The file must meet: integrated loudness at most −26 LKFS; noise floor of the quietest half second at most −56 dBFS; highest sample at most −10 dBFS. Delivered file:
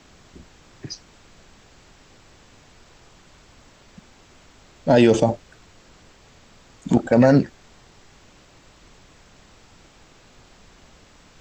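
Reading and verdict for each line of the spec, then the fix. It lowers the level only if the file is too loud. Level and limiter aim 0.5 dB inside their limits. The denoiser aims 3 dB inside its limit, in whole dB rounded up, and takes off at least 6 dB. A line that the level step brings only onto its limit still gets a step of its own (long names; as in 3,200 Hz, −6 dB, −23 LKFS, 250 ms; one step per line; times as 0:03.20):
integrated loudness −18.5 LKFS: out of spec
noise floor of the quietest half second −51 dBFS: out of spec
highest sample −5.5 dBFS: out of spec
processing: level −8 dB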